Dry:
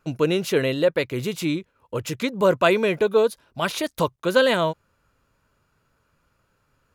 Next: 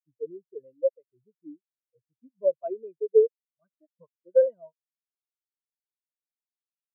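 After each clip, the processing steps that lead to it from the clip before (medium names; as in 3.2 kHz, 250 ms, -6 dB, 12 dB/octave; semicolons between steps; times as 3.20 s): spectral contrast expander 4:1; trim -4.5 dB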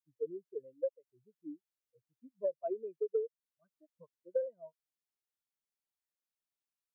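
compression 12:1, threshold -29 dBFS, peak gain reduction 16.5 dB; trim -1.5 dB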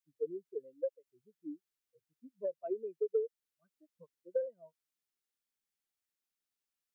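graphic EQ with 31 bands 125 Hz -11 dB, 630 Hz -8 dB, 1 kHz -6 dB; trim +2 dB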